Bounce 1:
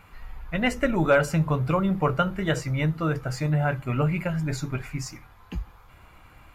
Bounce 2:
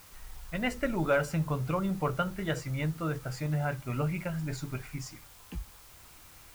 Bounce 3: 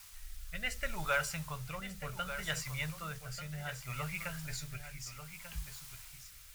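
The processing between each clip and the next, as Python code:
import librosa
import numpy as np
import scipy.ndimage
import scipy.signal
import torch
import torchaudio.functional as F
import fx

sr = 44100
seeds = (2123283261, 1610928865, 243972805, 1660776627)

y1 = fx.quant_dither(x, sr, seeds[0], bits=8, dither='triangular')
y1 = y1 * 10.0 ** (-7.0 / 20.0)
y2 = fx.tone_stack(y1, sr, knobs='10-0-10')
y2 = fx.rotary(y2, sr, hz=0.65)
y2 = y2 + 10.0 ** (-10.5 / 20.0) * np.pad(y2, (int(1190 * sr / 1000.0), 0))[:len(y2)]
y2 = y2 * 10.0 ** (6.0 / 20.0)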